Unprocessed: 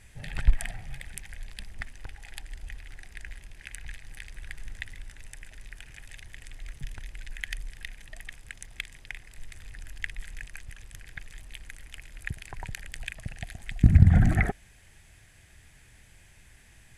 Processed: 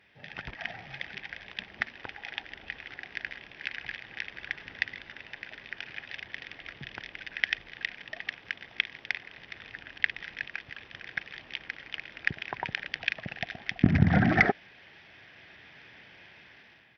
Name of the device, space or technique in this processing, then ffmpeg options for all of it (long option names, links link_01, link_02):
Bluetooth headset: -af "highpass=250,dynaudnorm=framelen=290:gausssize=5:maxgain=11dB,aresample=8000,aresample=44100,volume=-2dB" -ar 44100 -c:a sbc -b:a 64k